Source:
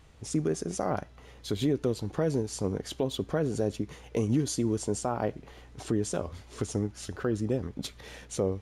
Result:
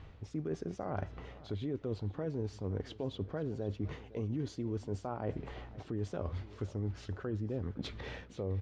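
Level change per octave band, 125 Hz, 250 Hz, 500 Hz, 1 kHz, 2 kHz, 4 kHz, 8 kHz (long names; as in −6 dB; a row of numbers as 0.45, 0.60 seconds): −4.5, −9.0, −9.0, −8.5, −7.0, −10.5, −23.0 decibels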